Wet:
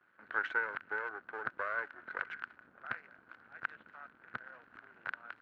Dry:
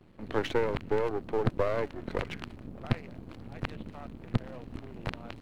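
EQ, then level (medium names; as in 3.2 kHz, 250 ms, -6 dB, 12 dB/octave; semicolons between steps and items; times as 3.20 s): band-pass filter 1.5 kHz, Q 9.1; +11.0 dB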